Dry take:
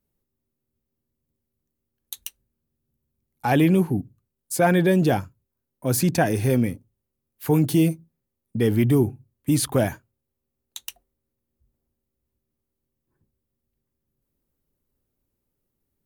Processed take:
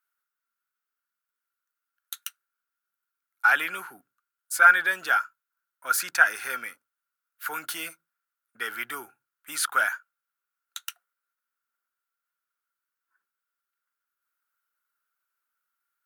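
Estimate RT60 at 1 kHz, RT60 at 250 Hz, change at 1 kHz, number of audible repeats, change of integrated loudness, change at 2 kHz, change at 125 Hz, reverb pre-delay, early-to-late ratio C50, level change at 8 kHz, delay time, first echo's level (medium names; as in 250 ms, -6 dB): no reverb, no reverb, +3.0 dB, no echo, -2.5 dB, +10.0 dB, under -40 dB, no reverb, no reverb, -2.0 dB, no echo, no echo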